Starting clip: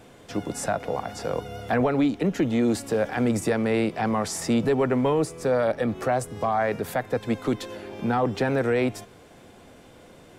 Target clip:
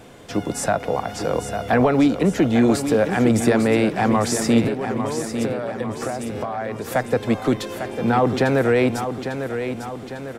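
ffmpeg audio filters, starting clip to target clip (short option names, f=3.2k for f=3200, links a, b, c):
-filter_complex "[0:a]asettb=1/sr,asplit=3[a][b][c];[a]atrim=end=4.674[d];[b]atrim=start=4.67:end=6.92,asetpts=PTS-STARTPTS,afade=t=in:d=0.004:c=qsin,afade=t=out:st=2.246:d=0.004:c=qsin,acompressor=threshold=-30dB:ratio=10[e];[c]atrim=start=6.916[f];[d][e]acrossfade=d=0.004:c1=hsin:c2=qsin[g];[g][f]acrossfade=d=0.004:c1=qsin:c2=hsin,aecho=1:1:850|1700|2550|3400|4250|5100:0.376|0.195|0.102|0.0528|0.0275|0.0143,volume=5.5dB"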